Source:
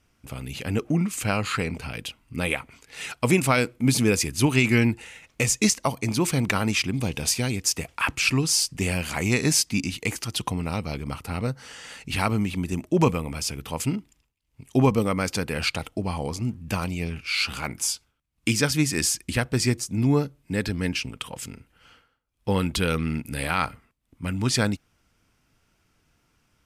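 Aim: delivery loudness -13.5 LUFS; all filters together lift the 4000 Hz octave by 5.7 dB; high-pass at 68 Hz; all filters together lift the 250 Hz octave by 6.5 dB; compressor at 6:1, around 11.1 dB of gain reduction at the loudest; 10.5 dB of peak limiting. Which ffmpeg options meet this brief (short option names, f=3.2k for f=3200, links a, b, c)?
-af "highpass=68,equalizer=f=250:t=o:g=8,equalizer=f=4k:t=o:g=7.5,acompressor=threshold=-22dB:ratio=6,volume=16.5dB,alimiter=limit=-2.5dB:level=0:latency=1"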